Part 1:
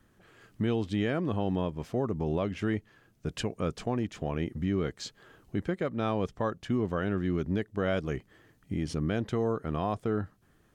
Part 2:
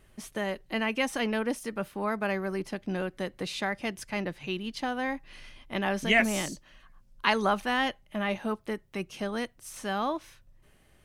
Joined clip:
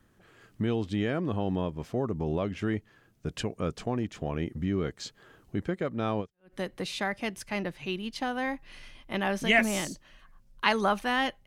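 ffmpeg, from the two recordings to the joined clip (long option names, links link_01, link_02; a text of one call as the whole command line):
ffmpeg -i cue0.wav -i cue1.wav -filter_complex "[0:a]apad=whole_dur=11.46,atrim=end=11.46,atrim=end=6.54,asetpts=PTS-STARTPTS[link_01];[1:a]atrim=start=2.81:end=8.07,asetpts=PTS-STARTPTS[link_02];[link_01][link_02]acrossfade=duration=0.34:curve1=exp:curve2=exp" out.wav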